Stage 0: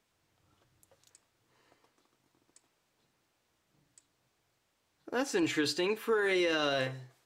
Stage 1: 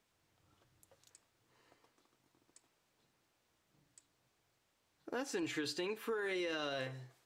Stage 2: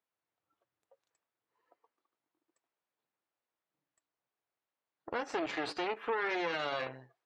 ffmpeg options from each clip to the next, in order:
-af "acompressor=threshold=0.0141:ratio=2.5,volume=0.794"
-af "aeval=exprs='0.0473*(cos(1*acos(clip(val(0)/0.0473,-1,1)))-cos(1*PI/2))+0.0211*(cos(2*acos(clip(val(0)/0.0473,-1,1)))-cos(2*PI/2))+0.0075*(cos(4*acos(clip(val(0)/0.0473,-1,1)))-cos(4*PI/2))+0.0133*(cos(6*acos(clip(val(0)/0.0473,-1,1)))-cos(6*PI/2))':c=same,bandpass=f=1000:t=q:w=0.52:csg=0,afftdn=nr=17:nf=-62,volume=1.88"

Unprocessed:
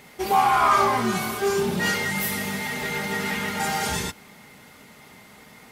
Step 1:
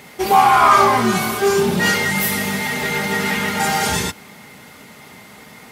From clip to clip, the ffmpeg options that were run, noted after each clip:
-af "highpass=60,volume=2.24"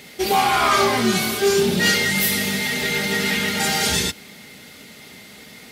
-af "equalizer=f=125:t=o:w=1:g=-4,equalizer=f=1000:t=o:w=1:g=-10,equalizer=f=4000:t=o:w=1:g=5"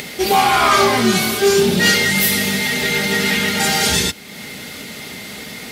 -af "acompressor=mode=upward:threshold=0.0447:ratio=2.5,volume=1.58"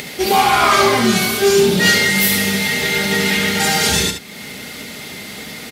-af "aecho=1:1:71:0.398"

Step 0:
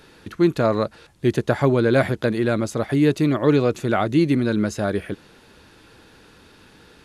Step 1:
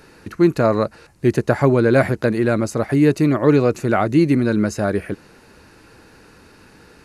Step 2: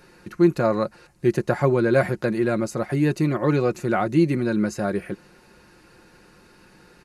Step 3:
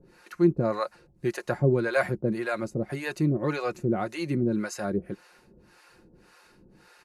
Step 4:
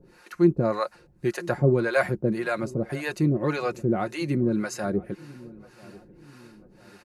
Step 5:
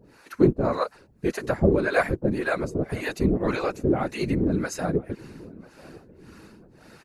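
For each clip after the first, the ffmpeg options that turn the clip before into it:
-af "equalizer=f=3400:w=4.9:g=-13,volume=1.41"
-af "aecho=1:1:5.6:0.48,volume=0.531"
-filter_complex "[0:a]acrossover=split=540[s0][s1];[s0]aeval=exprs='val(0)*(1-1/2+1/2*cos(2*PI*1.8*n/s))':c=same[s2];[s1]aeval=exprs='val(0)*(1-1/2-1/2*cos(2*PI*1.8*n/s))':c=same[s3];[s2][s3]amix=inputs=2:normalize=0"
-filter_complex "[0:a]asplit=2[s0][s1];[s1]adelay=992,lowpass=f=890:p=1,volume=0.1,asplit=2[s2][s3];[s3]adelay=992,lowpass=f=890:p=1,volume=0.51,asplit=2[s4][s5];[s5]adelay=992,lowpass=f=890:p=1,volume=0.51,asplit=2[s6][s7];[s7]adelay=992,lowpass=f=890:p=1,volume=0.51[s8];[s0][s2][s4][s6][s8]amix=inputs=5:normalize=0,volume=1.26"
-af "afftfilt=real='hypot(re,im)*cos(2*PI*random(0))':imag='hypot(re,im)*sin(2*PI*random(1))':win_size=512:overlap=0.75,volume=2.24"

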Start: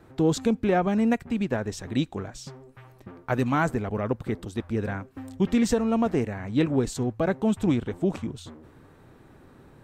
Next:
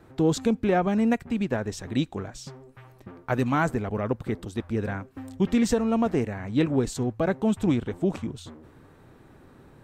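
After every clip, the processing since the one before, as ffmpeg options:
-af anull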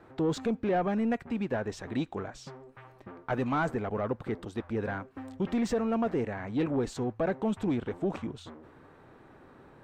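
-filter_complex "[0:a]asoftclip=type=tanh:threshold=0.133,asplit=2[s0][s1];[s1]highpass=f=720:p=1,volume=3.55,asoftclip=type=tanh:threshold=0.133[s2];[s0][s2]amix=inputs=2:normalize=0,lowpass=f=1400:p=1,volume=0.501,volume=0.794"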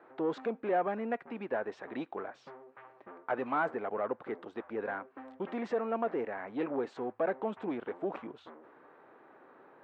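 -af "highpass=400,lowpass=2100"

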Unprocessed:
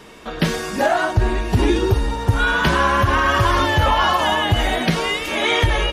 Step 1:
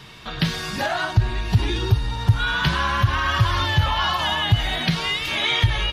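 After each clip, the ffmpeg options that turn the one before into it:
-filter_complex "[0:a]equalizer=f=125:t=o:w=1:g=12,equalizer=f=250:t=o:w=1:g=-7,equalizer=f=500:t=o:w=1:g=-8,equalizer=f=4000:t=o:w=1:g=8,equalizer=f=8000:t=o:w=1:g=-5,asplit=2[s0][s1];[s1]acompressor=threshold=0.0794:ratio=6,volume=1.41[s2];[s0][s2]amix=inputs=2:normalize=0,volume=0.376"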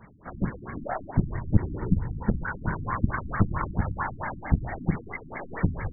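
-af "afftfilt=real='hypot(re,im)*cos(2*PI*random(0))':imag='hypot(re,im)*sin(2*PI*random(1))':win_size=512:overlap=0.75,aeval=exprs='0.447*(cos(1*acos(clip(val(0)/0.447,-1,1)))-cos(1*PI/2))+0.1*(cos(4*acos(clip(val(0)/0.447,-1,1)))-cos(4*PI/2))':c=same,afftfilt=real='re*lt(b*sr/1024,310*pow(2300/310,0.5+0.5*sin(2*PI*4.5*pts/sr)))':imag='im*lt(b*sr/1024,310*pow(2300/310,0.5+0.5*sin(2*PI*4.5*pts/sr)))':win_size=1024:overlap=0.75"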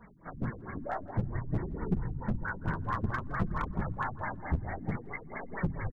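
-af "asoftclip=type=hard:threshold=0.112,flanger=delay=4:depth=8.2:regen=-24:speed=0.55:shape=triangular,aecho=1:1:165|330:0.0891|0.0196"

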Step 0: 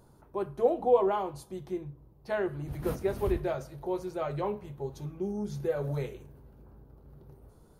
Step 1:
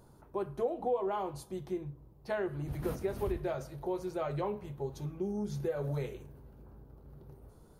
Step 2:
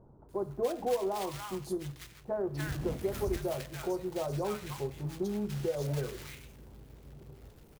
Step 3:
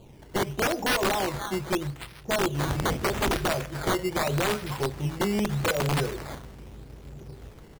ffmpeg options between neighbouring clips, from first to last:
-af "acompressor=threshold=0.0282:ratio=3"
-filter_complex "[0:a]acrusher=bits=3:mode=log:mix=0:aa=0.000001,acrossover=split=1100[s0][s1];[s1]adelay=290[s2];[s0][s2]amix=inputs=2:normalize=0,volume=1.19"
-af "acrusher=samples=12:mix=1:aa=0.000001:lfo=1:lforange=12:lforate=0.81,aeval=exprs='(mod(22.4*val(0)+1,2)-1)/22.4':c=same,volume=2.51"

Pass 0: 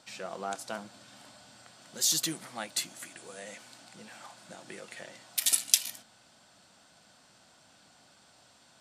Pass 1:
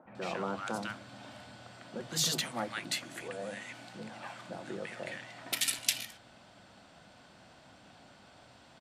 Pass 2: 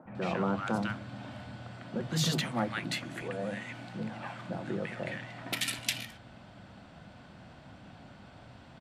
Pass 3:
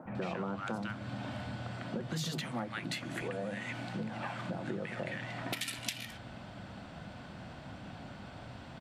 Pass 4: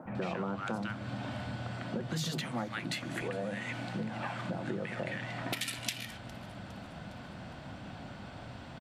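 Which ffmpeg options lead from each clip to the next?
-filter_complex "[0:a]bass=f=250:g=4,treble=f=4000:g=-14,acrossover=split=170|1300[s0][s1][s2];[s0]adelay=50[s3];[s2]adelay=150[s4];[s3][s1][s4]amix=inputs=3:normalize=0,afftfilt=real='re*lt(hypot(re,im),0.0794)':imag='im*lt(hypot(re,im),0.0794)':win_size=1024:overlap=0.75,volume=2.11"
-af "bass=f=250:g=9,treble=f=4000:g=-9,volume=1.41"
-af "acompressor=threshold=0.0112:ratio=6,volume=1.68"
-af "aecho=1:1:409|818|1227|1636:0.075|0.0412|0.0227|0.0125,volume=1.19"

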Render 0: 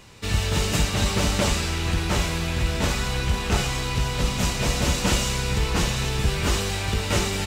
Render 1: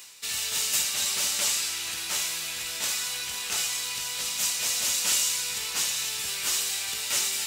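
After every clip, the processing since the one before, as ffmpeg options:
-af "aderivative,areverse,acompressor=mode=upward:threshold=0.0141:ratio=2.5,areverse,volume=1.88"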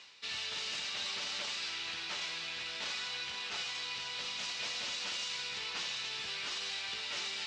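-af "lowpass=f=4600:w=0.5412,lowpass=f=4600:w=1.3066,alimiter=level_in=1.12:limit=0.0631:level=0:latency=1:release=25,volume=0.891,highpass=f=120:p=1,volume=0.631"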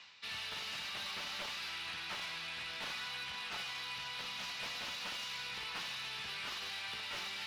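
-filter_complex "[0:a]aemphasis=mode=reproduction:type=50fm,acrossover=split=290|570|1600[s0][s1][s2][s3];[s1]acrusher=bits=6:dc=4:mix=0:aa=0.000001[s4];[s3]asoftclip=type=tanh:threshold=0.01[s5];[s0][s4][s2][s5]amix=inputs=4:normalize=0,volume=1.19"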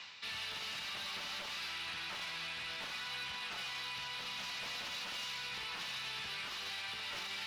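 -af "alimiter=level_in=7.5:limit=0.0631:level=0:latency=1:release=120,volume=0.133,volume=2.11"

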